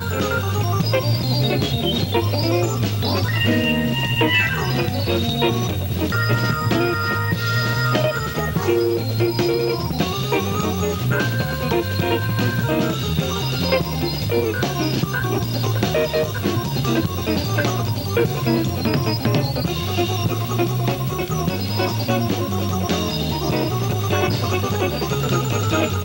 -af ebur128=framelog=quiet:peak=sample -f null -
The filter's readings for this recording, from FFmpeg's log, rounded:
Integrated loudness:
  I:         -20.4 LUFS
  Threshold: -30.4 LUFS
Loudness range:
  LRA:         2.2 LU
  Threshold: -40.4 LUFS
  LRA low:   -21.2 LUFS
  LRA high:  -19.0 LUFS
Sample peak:
  Peak:       -4.5 dBFS